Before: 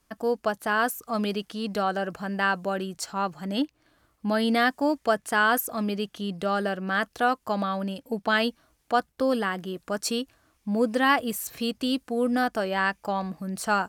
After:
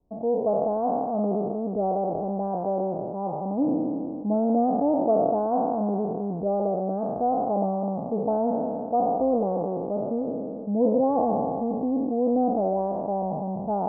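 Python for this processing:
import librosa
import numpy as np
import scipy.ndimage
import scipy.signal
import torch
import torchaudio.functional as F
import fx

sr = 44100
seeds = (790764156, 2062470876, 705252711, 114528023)

y = fx.spec_trails(x, sr, decay_s=2.66)
y = scipy.signal.sosfilt(scipy.signal.butter(8, 830.0, 'lowpass', fs=sr, output='sos'), y)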